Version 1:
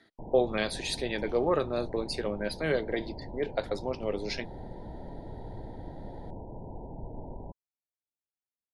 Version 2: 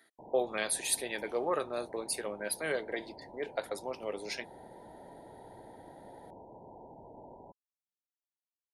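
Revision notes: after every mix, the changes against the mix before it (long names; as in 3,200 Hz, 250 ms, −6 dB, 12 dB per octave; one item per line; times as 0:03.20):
speech: remove low-pass with resonance 4,800 Hz, resonance Q 1.6
master: add high-pass filter 770 Hz 6 dB per octave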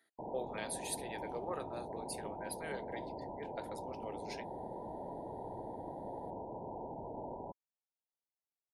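speech −10.0 dB
background +7.0 dB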